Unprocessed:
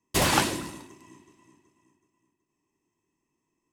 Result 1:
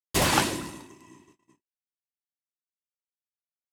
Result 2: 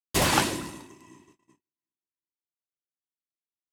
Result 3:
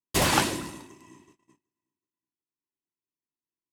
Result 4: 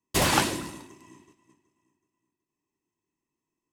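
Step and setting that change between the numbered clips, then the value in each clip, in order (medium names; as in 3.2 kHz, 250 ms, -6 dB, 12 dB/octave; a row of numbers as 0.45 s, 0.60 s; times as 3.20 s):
gate, range: -58 dB, -35 dB, -23 dB, -7 dB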